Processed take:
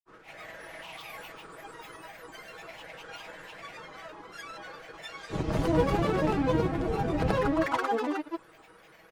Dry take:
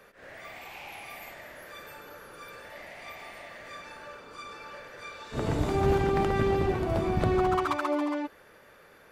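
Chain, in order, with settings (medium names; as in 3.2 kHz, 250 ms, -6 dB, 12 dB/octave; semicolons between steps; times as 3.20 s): granulator, pitch spread up and down by 7 st; comb 6.2 ms, depth 47%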